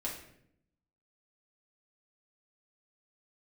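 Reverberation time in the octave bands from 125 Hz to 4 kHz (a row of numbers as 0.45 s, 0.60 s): 1.1 s, 1.0 s, 0.80 s, 0.60 s, 0.65 s, 0.55 s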